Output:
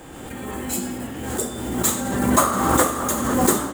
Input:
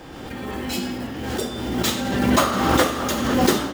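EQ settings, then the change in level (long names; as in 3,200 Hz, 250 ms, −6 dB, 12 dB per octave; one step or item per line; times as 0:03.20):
dynamic equaliser 2,800 Hz, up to −7 dB, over −41 dBFS, Q 1.8
high shelf with overshoot 6,400 Hz +6.5 dB, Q 3
dynamic equaliser 1,100 Hz, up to +5 dB, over −39 dBFS, Q 3
−1.0 dB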